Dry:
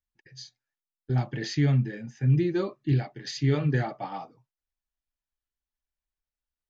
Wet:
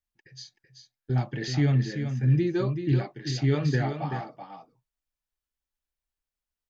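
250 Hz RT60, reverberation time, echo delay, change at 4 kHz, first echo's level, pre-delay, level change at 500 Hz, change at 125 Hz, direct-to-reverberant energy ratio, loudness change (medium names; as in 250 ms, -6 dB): no reverb, no reverb, 381 ms, +0.5 dB, -8.0 dB, no reverb, +0.5 dB, +0.5 dB, no reverb, +0.5 dB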